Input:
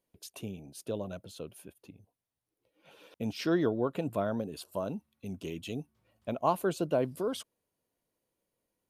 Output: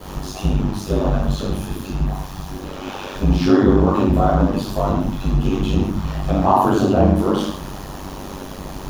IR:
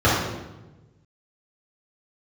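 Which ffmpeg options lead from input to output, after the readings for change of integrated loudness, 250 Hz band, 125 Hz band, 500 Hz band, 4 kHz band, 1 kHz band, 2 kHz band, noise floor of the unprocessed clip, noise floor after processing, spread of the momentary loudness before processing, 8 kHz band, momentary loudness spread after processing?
+15.5 dB, +17.5 dB, +21.5 dB, +12.5 dB, +13.0 dB, +17.0 dB, +12.5 dB, below −85 dBFS, −33 dBFS, 16 LU, +11.5 dB, 17 LU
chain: -filter_complex "[0:a]aeval=exprs='val(0)+0.5*0.0112*sgn(val(0))':channel_layout=same,equalizer=frequency=1400:width=3.3:gain=-4.5,acrossover=split=1100[link_01][link_02];[link_02]asoftclip=type=tanh:threshold=-36dB[link_03];[link_01][link_03]amix=inputs=2:normalize=0[link_04];[1:a]atrim=start_sample=2205,afade=type=out:start_time=0.25:duration=0.01,atrim=end_sample=11466[link_05];[link_04][link_05]afir=irnorm=-1:irlink=0,aeval=exprs='val(0)*sin(2*PI*48*n/s)':channel_layout=same,equalizer=frequency=125:width_type=o:width=1:gain=-6,equalizer=frequency=500:width_type=o:width=1:gain=-11,equalizer=frequency=1000:width_type=o:width=1:gain=5,equalizer=frequency=2000:width_type=o:width=1:gain=-5,asplit=2[link_06][link_07];[link_07]alimiter=limit=-6.5dB:level=0:latency=1,volume=0dB[link_08];[link_06][link_08]amix=inputs=2:normalize=0,volume=-7.5dB"

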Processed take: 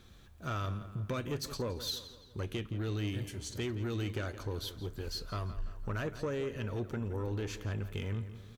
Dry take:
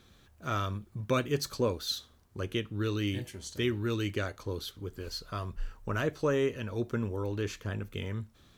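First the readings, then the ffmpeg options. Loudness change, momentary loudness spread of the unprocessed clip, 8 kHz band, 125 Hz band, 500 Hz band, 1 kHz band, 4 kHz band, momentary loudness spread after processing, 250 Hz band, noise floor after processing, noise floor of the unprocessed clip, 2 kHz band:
−4.0 dB, 10 LU, −2.5 dB, −1.5 dB, −6.5 dB, −5.5 dB, −3.5 dB, 5 LU, −5.0 dB, −56 dBFS, −61 dBFS, −5.5 dB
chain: -filter_complex "[0:a]lowshelf=frequency=82:gain=7.5,acompressor=threshold=-30dB:ratio=6,asoftclip=type=tanh:threshold=-29dB,asplit=2[link_01][link_02];[link_02]adelay=169,lowpass=frequency=4000:poles=1,volume=-12.5dB,asplit=2[link_03][link_04];[link_04]adelay=169,lowpass=frequency=4000:poles=1,volume=0.53,asplit=2[link_05][link_06];[link_06]adelay=169,lowpass=frequency=4000:poles=1,volume=0.53,asplit=2[link_07][link_08];[link_08]adelay=169,lowpass=frequency=4000:poles=1,volume=0.53,asplit=2[link_09][link_10];[link_10]adelay=169,lowpass=frequency=4000:poles=1,volume=0.53[link_11];[link_03][link_05][link_07][link_09][link_11]amix=inputs=5:normalize=0[link_12];[link_01][link_12]amix=inputs=2:normalize=0"

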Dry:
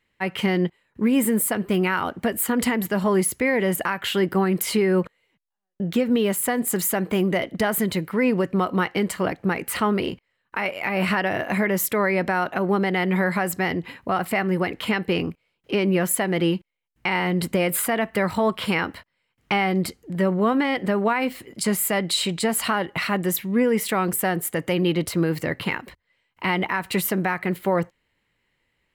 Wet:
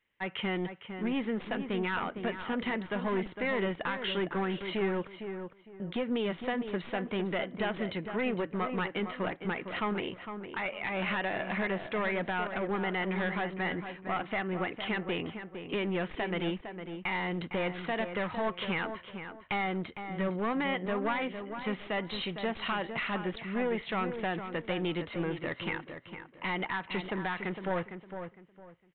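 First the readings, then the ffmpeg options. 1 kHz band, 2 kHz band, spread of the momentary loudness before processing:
−9.0 dB, −8.0 dB, 5 LU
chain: -filter_complex "[0:a]lowshelf=frequency=360:gain=-7,aeval=exprs='clip(val(0),-1,0.0708)':channel_layout=same,asplit=2[link_01][link_02];[link_02]adelay=457,lowpass=frequency=2100:poles=1,volume=-8dB,asplit=2[link_03][link_04];[link_04]adelay=457,lowpass=frequency=2100:poles=1,volume=0.27,asplit=2[link_05][link_06];[link_06]adelay=457,lowpass=frequency=2100:poles=1,volume=0.27[link_07];[link_01][link_03][link_05][link_07]amix=inputs=4:normalize=0,aresample=8000,aresample=44100,volume=-6.5dB"

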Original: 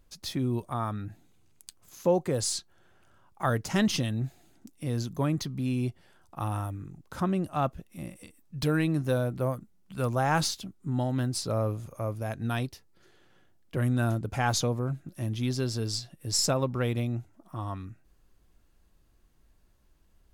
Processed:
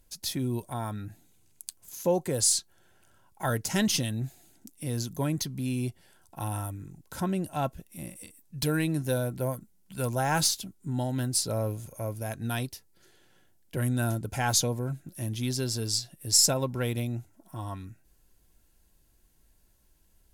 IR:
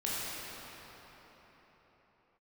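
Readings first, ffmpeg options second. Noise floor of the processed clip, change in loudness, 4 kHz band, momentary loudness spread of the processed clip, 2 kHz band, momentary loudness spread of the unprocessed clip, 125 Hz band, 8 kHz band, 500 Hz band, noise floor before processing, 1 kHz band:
−64 dBFS, +1.0 dB, +3.5 dB, 18 LU, −0.5 dB, 12 LU, −1.5 dB, +7.5 dB, −1.5 dB, −63 dBFS, −2.0 dB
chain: -af "asuperstop=centerf=1200:order=12:qfactor=6.6,equalizer=frequency=12000:width=0.41:gain=12.5,volume=-1.5dB"

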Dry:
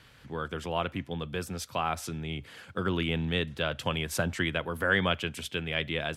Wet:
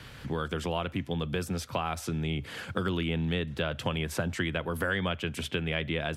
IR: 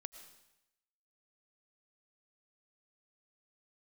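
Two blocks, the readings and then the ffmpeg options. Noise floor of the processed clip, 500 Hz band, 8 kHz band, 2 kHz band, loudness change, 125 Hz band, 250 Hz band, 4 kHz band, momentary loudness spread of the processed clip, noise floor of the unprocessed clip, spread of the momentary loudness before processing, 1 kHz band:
−47 dBFS, 0.0 dB, −2.0 dB, −2.5 dB, −0.5 dB, +2.0 dB, +1.5 dB, −2.0 dB, 3 LU, −56 dBFS, 10 LU, −2.0 dB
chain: -filter_complex "[0:a]lowshelf=frequency=460:gain=4,acrossover=split=80|2800[link_01][link_02][link_03];[link_01]acompressor=threshold=-55dB:ratio=4[link_04];[link_02]acompressor=threshold=-38dB:ratio=4[link_05];[link_03]acompressor=threshold=-50dB:ratio=4[link_06];[link_04][link_05][link_06]amix=inputs=3:normalize=0,volume=8dB"

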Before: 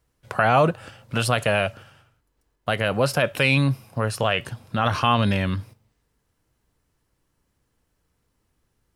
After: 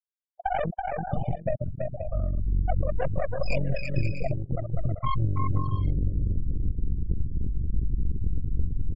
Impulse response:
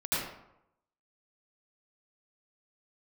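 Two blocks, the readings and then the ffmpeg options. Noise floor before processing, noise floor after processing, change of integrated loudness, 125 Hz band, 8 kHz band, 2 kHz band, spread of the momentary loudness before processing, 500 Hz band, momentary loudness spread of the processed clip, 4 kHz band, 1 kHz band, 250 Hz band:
−73 dBFS, −61 dBFS, −7.5 dB, −0.5 dB, below −25 dB, −15.5 dB, 11 LU, −7.5 dB, 4 LU, −21.0 dB, −8.0 dB, −7.0 dB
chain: -af "aeval=exprs='val(0)+0.5*0.119*sgn(val(0))':channel_layout=same,asubboost=boost=6.5:cutoff=65,dynaudnorm=framelen=110:gausssize=5:maxgain=10dB,afftfilt=real='re*gte(hypot(re,im),1.78)':imag='im*gte(hypot(re,im),1.78)':win_size=1024:overlap=0.75,agate=range=-33dB:threshold=-25dB:ratio=3:detection=peak,aeval=exprs='(tanh(8.91*val(0)+0.55)-tanh(0.55))/8.91':channel_layout=same,tremolo=f=46:d=0.71,highshelf=frequency=8400:gain=6,acompressor=threshold=-31dB:ratio=8,afftfilt=real='re*gte(hypot(re,im),0.00631)':imag='im*gte(hypot(re,im),0.00631)':win_size=1024:overlap=0.75,aecho=1:1:330|528|646.8|718.1|760.8:0.631|0.398|0.251|0.158|0.1,afftfilt=real='re*(1-between(b*sr/1024,890*pow(6400/890,0.5+0.5*sin(2*PI*0.44*pts/sr))/1.41,890*pow(6400/890,0.5+0.5*sin(2*PI*0.44*pts/sr))*1.41))':imag='im*(1-between(b*sr/1024,890*pow(6400/890,0.5+0.5*sin(2*PI*0.44*pts/sr))/1.41,890*pow(6400/890,0.5+0.5*sin(2*PI*0.44*pts/sr))*1.41))':win_size=1024:overlap=0.75,volume=7.5dB"

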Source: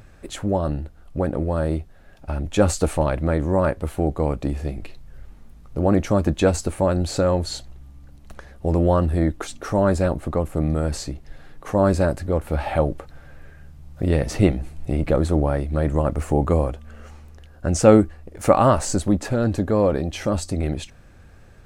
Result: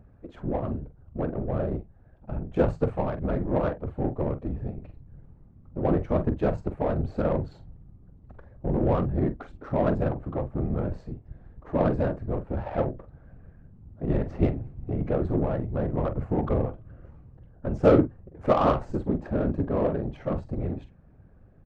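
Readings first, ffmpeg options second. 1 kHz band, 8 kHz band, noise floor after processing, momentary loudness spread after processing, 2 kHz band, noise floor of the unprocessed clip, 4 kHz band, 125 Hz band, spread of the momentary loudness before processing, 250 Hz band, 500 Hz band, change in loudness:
−6.0 dB, below −30 dB, −54 dBFS, 12 LU, −9.0 dB, −47 dBFS, below −15 dB, −6.0 dB, 12 LU, −5.5 dB, −6.0 dB, −6.0 dB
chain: -filter_complex "[0:a]afftfilt=real='hypot(re,im)*cos(2*PI*random(0))':imag='hypot(re,im)*sin(2*PI*random(1))':win_size=512:overlap=0.75,asplit=2[link_01][link_02];[link_02]adelay=45,volume=-10dB[link_03];[link_01][link_03]amix=inputs=2:normalize=0,adynamicsmooth=sensitivity=1:basefreq=1000"

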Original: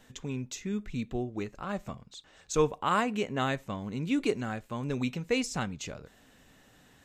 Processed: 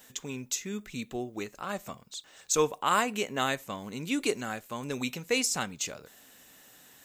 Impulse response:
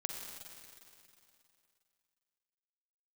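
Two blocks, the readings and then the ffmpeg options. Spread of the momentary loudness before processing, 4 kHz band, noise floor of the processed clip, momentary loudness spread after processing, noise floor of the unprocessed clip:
13 LU, +5.0 dB, −58 dBFS, 12 LU, −60 dBFS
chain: -af "aemphasis=mode=production:type=bsi,volume=1.5dB"

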